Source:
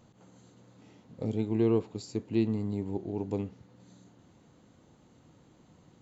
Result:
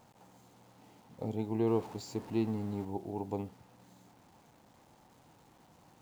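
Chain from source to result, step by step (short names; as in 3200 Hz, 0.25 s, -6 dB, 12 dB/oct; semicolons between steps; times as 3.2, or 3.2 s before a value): 1.67–2.85 zero-crossing step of -43 dBFS; requantised 10-bit, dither none; bell 830 Hz +11 dB 0.73 oct; gain -5.5 dB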